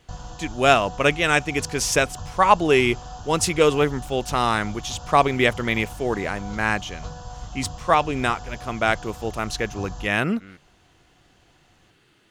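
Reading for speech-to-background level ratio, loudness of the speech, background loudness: 16.5 dB, -22.0 LUFS, -38.5 LUFS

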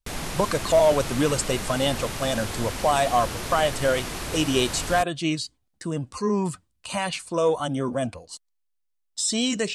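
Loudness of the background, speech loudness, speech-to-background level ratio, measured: -32.0 LUFS, -25.0 LUFS, 7.0 dB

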